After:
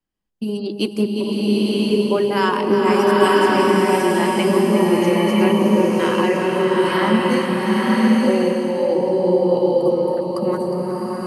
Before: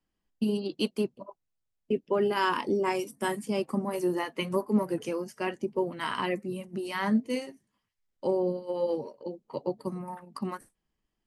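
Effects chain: AGC gain up to 9.5 dB; echo with dull and thin repeats by turns 0.18 s, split 880 Hz, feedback 61%, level -5 dB; bloom reverb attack 1 s, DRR -4.5 dB; gain -2.5 dB

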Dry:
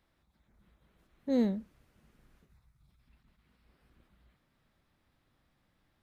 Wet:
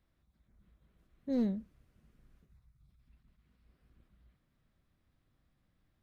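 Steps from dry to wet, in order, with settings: overloaded stage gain 22 dB; low shelf 240 Hz +9 dB; notch 870 Hz, Q 12; gain -7 dB

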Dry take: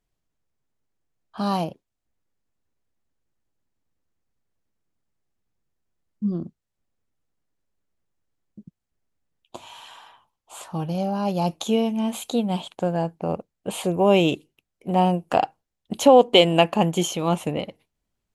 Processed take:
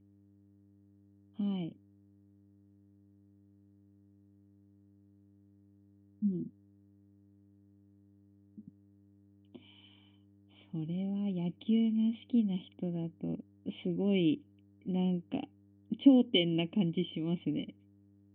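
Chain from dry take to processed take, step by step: buzz 100 Hz, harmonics 19, -53 dBFS -6 dB/oct; vocal tract filter i

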